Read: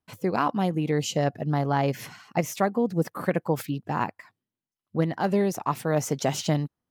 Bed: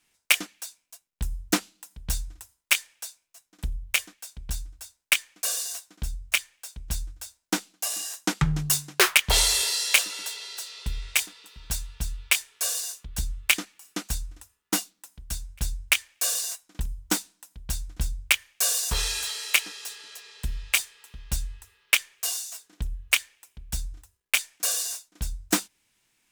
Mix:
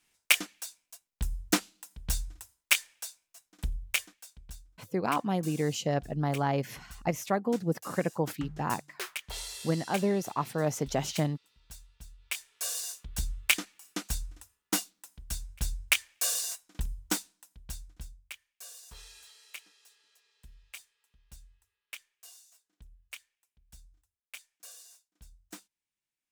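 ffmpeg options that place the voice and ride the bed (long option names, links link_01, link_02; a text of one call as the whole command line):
ffmpeg -i stem1.wav -i stem2.wav -filter_complex "[0:a]adelay=4700,volume=-4.5dB[link_01];[1:a]volume=13dB,afade=type=out:start_time=3.67:duration=0.96:silence=0.149624,afade=type=in:start_time=12.18:duration=0.77:silence=0.16788,afade=type=out:start_time=16.88:duration=1.34:silence=0.1[link_02];[link_01][link_02]amix=inputs=2:normalize=0" out.wav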